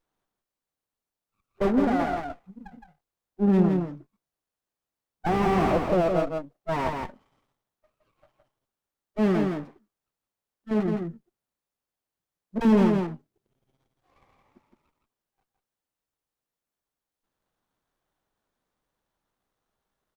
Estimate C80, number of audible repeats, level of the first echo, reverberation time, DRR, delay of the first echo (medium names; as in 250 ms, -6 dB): no reverb, 1, -4.5 dB, no reverb, no reverb, 165 ms